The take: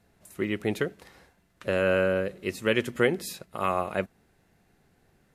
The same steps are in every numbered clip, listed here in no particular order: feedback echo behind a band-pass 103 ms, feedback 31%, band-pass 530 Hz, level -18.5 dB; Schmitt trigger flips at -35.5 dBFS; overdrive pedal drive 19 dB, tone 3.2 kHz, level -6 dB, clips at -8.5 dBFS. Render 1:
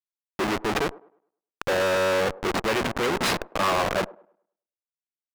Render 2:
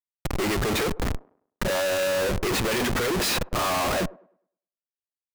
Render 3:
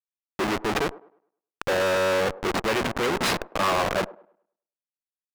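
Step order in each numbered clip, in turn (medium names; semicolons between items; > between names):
Schmitt trigger > overdrive pedal > feedback echo behind a band-pass; overdrive pedal > Schmitt trigger > feedback echo behind a band-pass; Schmitt trigger > feedback echo behind a band-pass > overdrive pedal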